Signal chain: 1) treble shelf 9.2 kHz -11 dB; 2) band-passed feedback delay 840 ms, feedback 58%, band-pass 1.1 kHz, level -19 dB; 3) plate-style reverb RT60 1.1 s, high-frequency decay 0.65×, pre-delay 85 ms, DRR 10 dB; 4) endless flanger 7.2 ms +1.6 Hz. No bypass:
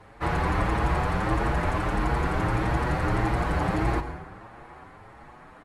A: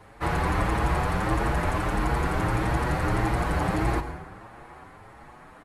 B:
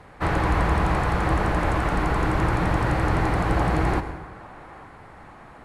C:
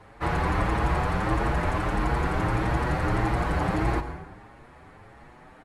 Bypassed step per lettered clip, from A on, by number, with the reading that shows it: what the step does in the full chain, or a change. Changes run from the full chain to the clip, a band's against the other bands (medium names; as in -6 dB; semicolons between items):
1, 8 kHz band +4.5 dB; 4, loudness change +3.0 LU; 2, momentary loudness spread change -6 LU